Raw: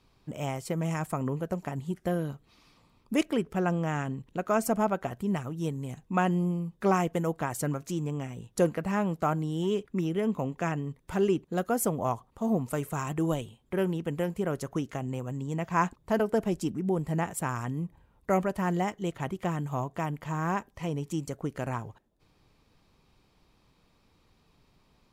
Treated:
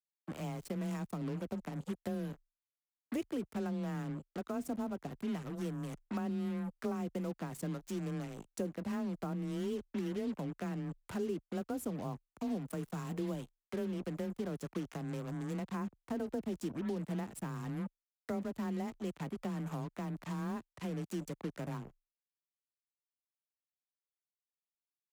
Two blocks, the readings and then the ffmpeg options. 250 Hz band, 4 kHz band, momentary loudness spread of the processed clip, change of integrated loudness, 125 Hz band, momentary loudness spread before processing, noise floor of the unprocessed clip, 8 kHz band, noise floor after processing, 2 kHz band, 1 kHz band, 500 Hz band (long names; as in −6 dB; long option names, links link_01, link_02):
−7.0 dB, −9.0 dB, 4 LU, −9.0 dB, −9.5 dB, 8 LU, −67 dBFS, −12.5 dB, below −85 dBFS, −13.0 dB, −15.0 dB, −11.0 dB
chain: -filter_complex "[0:a]acrusher=bits=5:mix=0:aa=0.5,afreqshift=20,acrossover=split=110|390[link_01][link_02][link_03];[link_01]acompressor=threshold=-54dB:ratio=4[link_04];[link_02]acompressor=threshold=-31dB:ratio=4[link_05];[link_03]acompressor=threshold=-42dB:ratio=4[link_06];[link_04][link_05][link_06]amix=inputs=3:normalize=0,volume=-4.5dB"